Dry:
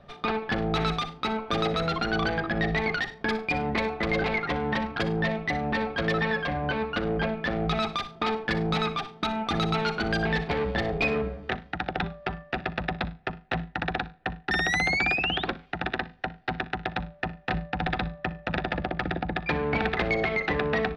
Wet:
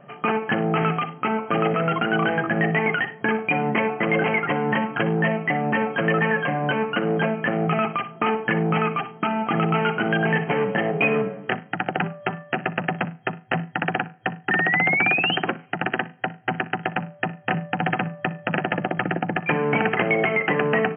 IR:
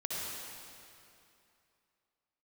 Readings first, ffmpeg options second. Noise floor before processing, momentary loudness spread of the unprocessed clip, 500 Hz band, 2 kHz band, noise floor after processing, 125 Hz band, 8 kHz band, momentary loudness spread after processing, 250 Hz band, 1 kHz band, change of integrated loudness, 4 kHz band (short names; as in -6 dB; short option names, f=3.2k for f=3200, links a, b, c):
-51 dBFS, 7 LU, +5.5 dB, +5.5 dB, -46 dBFS, +4.5 dB, n/a, 7 LU, +5.5 dB, +5.5 dB, +5.0 dB, 0.0 dB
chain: -af "afftfilt=real='re*between(b*sr/4096,110,3200)':imag='im*between(b*sr/4096,110,3200)':win_size=4096:overlap=0.75,volume=5.5dB"